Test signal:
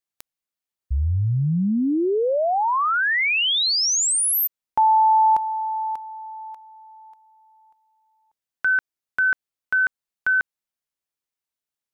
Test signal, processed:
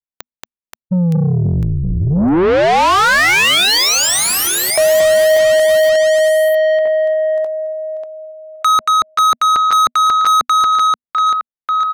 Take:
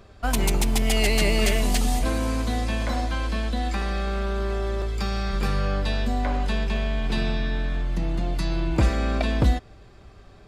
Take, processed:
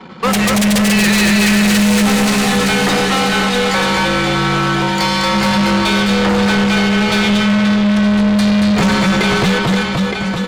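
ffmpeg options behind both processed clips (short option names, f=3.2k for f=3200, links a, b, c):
-filter_complex "[0:a]asplit=2[a][b];[b]aecho=0:1:230|529|917.7|1423|2080:0.631|0.398|0.251|0.158|0.1[c];[a][c]amix=inputs=2:normalize=0,afreqshift=-250,asplit=2[d][e];[e]highpass=f=720:p=1,volume=30dB,asoftclip=type=tanh:threshold=-5.5dB[f];[d][f]amix=inputs=2:normalize=0,lowpass=f=5.4k:p=1,volume=-6dB,anlmdn=6.31"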